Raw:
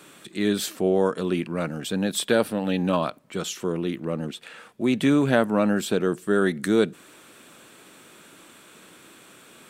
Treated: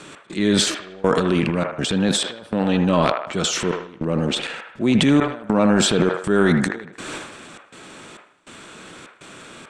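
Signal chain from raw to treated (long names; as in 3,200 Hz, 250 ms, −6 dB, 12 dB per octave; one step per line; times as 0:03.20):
low-shelf EQ 93 Hz +9.5 dB
transient designer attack −4 dB, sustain +11 dB
low-pass filter 8,100 Hz 24 dB per octave
in parallel at +2 dB: downward compressor, threshold −29 dBFS, peak gain reduction 15 dB
on the sum: gate pattern "x.xxx..xxx" 101 BPM −24 dB
on a send: delay with a band-pass on its return 78 ms, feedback 47%, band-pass 1,100 Hz, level −4.5 dB
on the sum: level that may fall only so fast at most 110 dB per second
level +1 dB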